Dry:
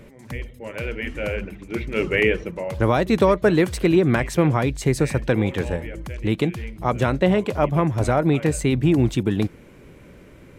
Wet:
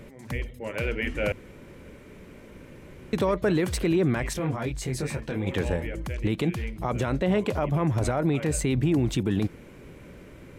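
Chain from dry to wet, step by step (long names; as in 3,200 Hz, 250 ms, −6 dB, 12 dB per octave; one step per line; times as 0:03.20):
brickwall limiter −15.5 dBFS, peak gain reduction 11 dB
0:01.32–0:03.13: fill with room tone
0:04.33–0:05.47: micro pitch shift up and down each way 13 cents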